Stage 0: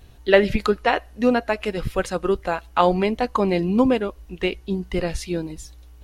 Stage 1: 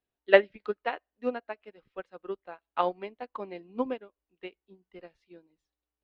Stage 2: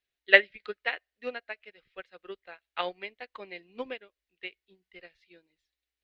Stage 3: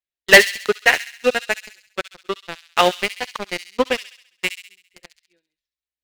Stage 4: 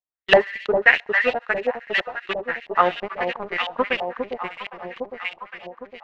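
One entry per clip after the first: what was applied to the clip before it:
three-band isolator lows -18 dB, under 220 Hz, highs -24 dB, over 4 kHz; upward expansion 2.5:1, over -31 dBFS; trim -1 dB
ten-band graphic EQ 125 Hz -3 dB, 250 Hz -8 dB, 1 kHz -8 dB, 2 kHz +11 dB, 4 kHz +9 dB; trim -2.5 dB
waveshaping leveller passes 5; feedback echo behind a high-pass 67 ms, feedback 52%, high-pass 3.1 kHz, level -7 dB
echo whose repeats swap between lows and highs 404 ms, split 830 Hz, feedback 73%, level -4 dB; LFO low-pass saw up 3 Hz 700–3200 Hz; trim -5.5 dB

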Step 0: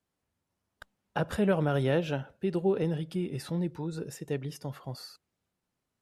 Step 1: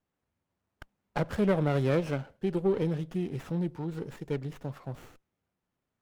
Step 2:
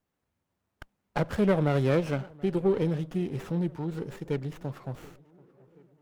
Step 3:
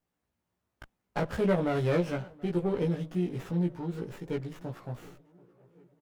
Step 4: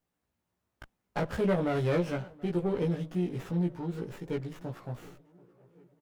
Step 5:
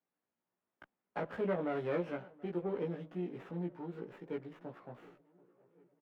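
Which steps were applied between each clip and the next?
sliding maximum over 9 samples
tape echo 731 ms, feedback 66%, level -22.5 dB, low-pass 2.3 kHz; trim +2 dB
doubling 17 ms -2 dB; trim -4 dB
saturation -17 dBFS, distortion -24 dB
three-band isolator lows -22 dB, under 180 Hz, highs -18 dB, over 3 kHz; trim -5.5 dB

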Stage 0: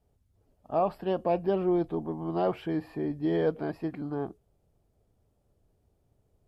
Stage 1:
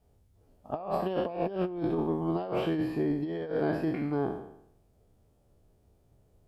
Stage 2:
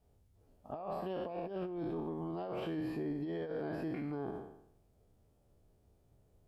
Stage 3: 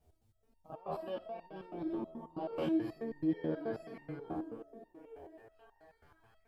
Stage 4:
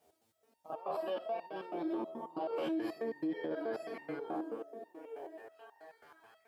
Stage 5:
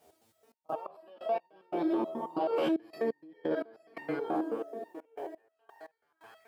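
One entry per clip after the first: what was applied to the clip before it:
spectral sustain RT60 0.74 s; compressor with a negative ratio -29 dBFS, ratio -0.5
peak limiter -27.5 dBFS, peak gain reduction 10 dB; trim -4 dB
repeats whose band climbs or falls 492 ms, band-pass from 290 Hz, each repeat 0.7 oct, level -5 dB; resonator arpeggio 9.3 Hz 79–920 Hz; trim +10.5 dB
high-pass 370 Hz 12 dB/octave; peak limiter -36.5 dBFS, peak gain reduction 10 dB; trim +7.5 dB
trance gate "xxx.x..x..xxx" 87 bpm -24 dB; trim +7 dB

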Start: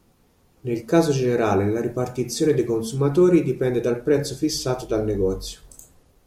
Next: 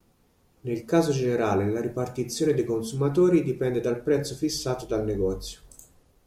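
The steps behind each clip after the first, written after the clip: gate with hold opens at -52 dBFS; trim -4 dB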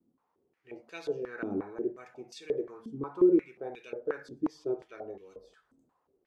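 step-sequenced band-pass 5.6 Hz 270–2700 Hz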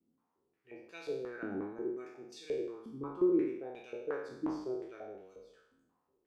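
spectral sustain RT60 0.76 s; trim -7 dB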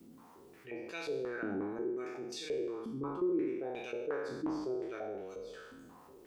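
level flattener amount 50%; trim -5 dB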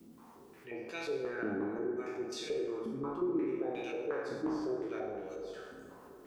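plate-style reverb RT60 2.7 s, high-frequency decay 0.35×, pre-delay 0 ms, DRR 5 dB

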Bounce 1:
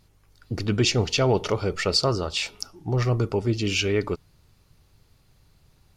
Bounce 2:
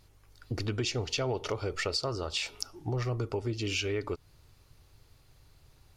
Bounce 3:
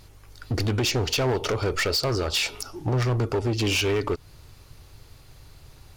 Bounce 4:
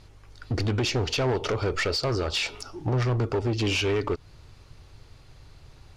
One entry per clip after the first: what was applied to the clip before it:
peaking EQ 190 Hz -11.5 dB 0.4 oct; compression 4:1, threshold -30 dBFS, peak gain reduction 11 dB
in parallel at -2 dB: peak limiter -24.5 dBFS, peak gain reduction 11.5 dB; on the sum: hard clipper -26 dBFS, distortion -11 dB; trim +6 dB
distance through air 62 m; trim -1 dB

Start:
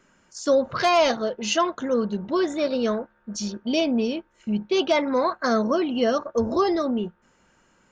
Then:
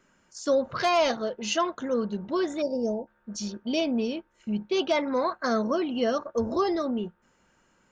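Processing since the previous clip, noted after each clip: time-frequency box 2.62–3.07 s, 950–4600 Hz -27 dB; trim -4 dB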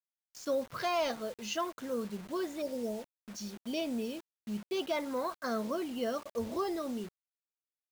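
bit crusher 7-bit; trim -8.5 dB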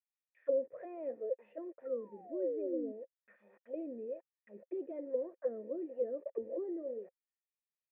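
painted sound fall, 1.85–2.92 s, 250–1400 Hz -34 dBFS; auto-wah 320–2500 Hz, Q 3.7, down, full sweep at -31.5 dBFS; cascade formant filter e; trim +13 dB

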